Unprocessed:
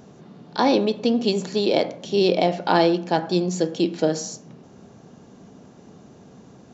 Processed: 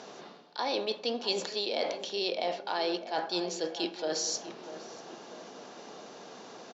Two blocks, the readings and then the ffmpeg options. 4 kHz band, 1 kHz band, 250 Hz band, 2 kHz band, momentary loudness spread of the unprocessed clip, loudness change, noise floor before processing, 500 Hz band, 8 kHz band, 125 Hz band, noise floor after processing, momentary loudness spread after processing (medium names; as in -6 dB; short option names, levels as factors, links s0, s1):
-3.5 dB, -10.5 dB, -16.5 dB, -8.0 dB, 6 LU, -11.0 dB, -48 dBFS, -11.5 dB, no reading, -23.5 dB, -49 dBFS, 16 LU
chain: -filter_complex "[0:a]highpass=550,areverse,acompressor=threshold=0.0126:ratio=6,areverse,lowpass=f=4900:t=q:w=1.6,asplit=2[s0][s1];[s1]adelay=644,lowpass=f=1900:p=1,volume=0.251,asplit=2[s2][s3];[s3]adelay=644,lowpass=f=1900:p=1,volume=0.53,asplit=2[s4][s5];[s5]adelay=644,lowpass=f=1900:p=1,volume=0.53,asplit=2[s6][s7];[s7]adelay=644,lowpass=f=1900:p=1,volume=0.53,asplit=2[s8][s9];[s9]adelay=644,lowpass=f=1900:p=1,volume=0.53,asplit=2[s10][s11];[s11]adelay=644,lowpass=f=1900:p=1,volume=0.53[s12];[s0][s2][s4][s6][s8][s10][s12]amix=inputs=7:normalize=0,volume=2.24"